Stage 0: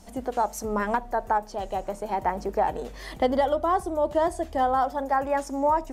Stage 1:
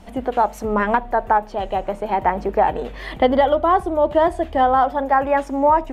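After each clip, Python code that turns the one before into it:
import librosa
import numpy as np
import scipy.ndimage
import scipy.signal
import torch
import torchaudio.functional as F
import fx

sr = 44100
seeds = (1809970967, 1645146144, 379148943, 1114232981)

y = fx.high_shelf_res(x, sr, hz=4200.0, db=-10.5, q=1.5)
y = y * librosa.db_to_amplitude(7.0)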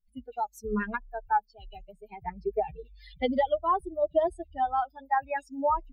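y = fx.bin_expand(x, sr, power=3.0)
y = y + 0.39 * np.pad(y, (int(4.8 * sr / 1000.0), 0))[:len(y)]
y = y * librosa.db_to_amplitude(-6.0)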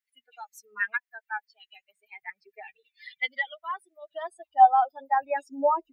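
y = fx.filter_sweep_highpass(x, sr, from_hz=1900.0, to_hz=390.0, start_s=4.0, end_s=5.07, q=4.1)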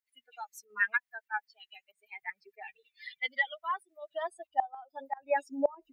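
y = fx.gate_flip(x, sr, shuts_db=-14.0, range_db=-26)
y = fx.volume_shaper(y, sr, bpm=94, per_beat=1, depth_db=-9, release_ms=60.0, shape='slow start')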